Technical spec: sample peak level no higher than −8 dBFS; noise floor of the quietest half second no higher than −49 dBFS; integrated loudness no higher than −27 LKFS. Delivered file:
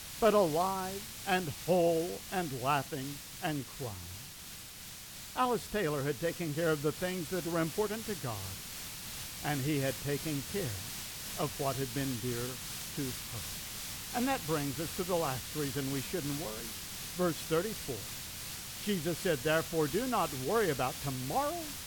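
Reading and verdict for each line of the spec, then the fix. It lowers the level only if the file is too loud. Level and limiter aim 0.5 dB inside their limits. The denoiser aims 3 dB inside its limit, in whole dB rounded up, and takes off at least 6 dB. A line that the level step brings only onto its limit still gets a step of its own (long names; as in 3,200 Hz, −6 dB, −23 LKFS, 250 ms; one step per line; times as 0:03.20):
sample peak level −17.0 dBFS: in spec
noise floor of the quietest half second −48 dBFS: out of spec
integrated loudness −34.5 LKFS: in spec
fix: broadband denoise 6 dB, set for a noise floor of −48 dBFS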